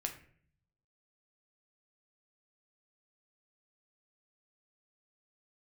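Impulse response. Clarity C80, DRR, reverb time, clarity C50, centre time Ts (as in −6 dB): 14.0 dB, 3.0 dB, 0.55 s, 10.0 dB, 14 ms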